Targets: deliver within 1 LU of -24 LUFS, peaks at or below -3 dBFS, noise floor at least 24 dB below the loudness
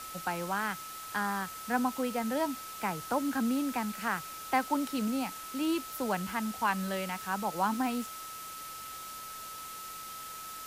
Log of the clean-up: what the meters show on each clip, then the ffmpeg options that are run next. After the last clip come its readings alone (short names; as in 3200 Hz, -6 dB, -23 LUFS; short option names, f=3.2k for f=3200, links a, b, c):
steady tone 1300 Hz; tone level -43 dBFS; noise floor -44 dBFS; noise floor target -58 dBFS; loudness -33.5 LUFS; peak -16.5 dBFS; loudness target -24.0 LUFS
-> -af "bandreject=f=1.3k:w=30"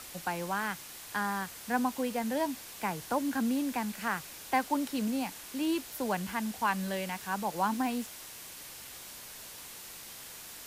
steady tone none; noise floor -47 dBFS; noise floor target -58 dBFS
-> -af "afftdn=nr=11:nf=-47"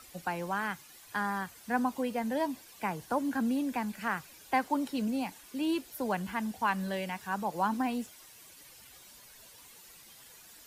noise floor -55 dBFS; noise floor target -58 dBFS
-> -af "afftdn=nr=6:nf=-55"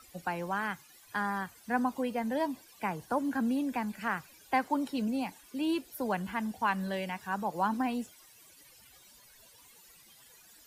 noise floor -58 dBFS; loudness -33.5 LUFS; peak -17.0 dBFS; loudness target -24.0 LUFS
-> -af "volume=9.5dB"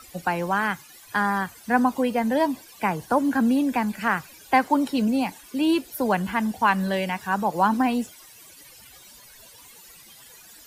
loudness -24.0 LUFS; peak -7.5 dBFS; noise floor -49 dBFS